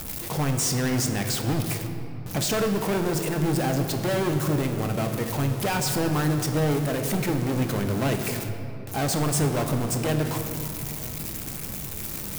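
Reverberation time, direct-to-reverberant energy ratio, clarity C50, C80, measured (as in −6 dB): 2.9 s, 4.5 dB, 6.5 dB, 7.5 dB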